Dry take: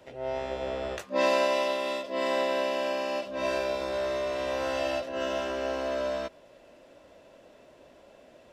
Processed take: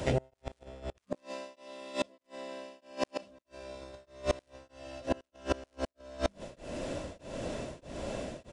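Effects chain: tone controls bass +13 dB, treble +9 dB; notches 50/100/150/200/250 Hz; flipped gate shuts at -20 dBFS, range -31 dB; in parallel at -12 dB: sample-rate reducer 7600 Hz; on the sum: flipped gate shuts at -28 dBFS, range -31 dB; crackle 390/s -72 dBFS; downsampling 22050 Hz; beating tremolo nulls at 1.6 Hz; gain +13.5 dB

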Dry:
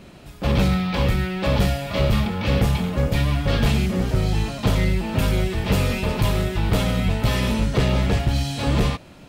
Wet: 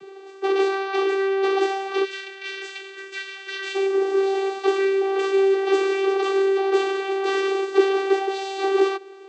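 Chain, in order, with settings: spectral gain 2.04–3.75, 240–1500 Hz -22 dB; vocoder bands 16, saw 389 Hz; gain +1.5 dB

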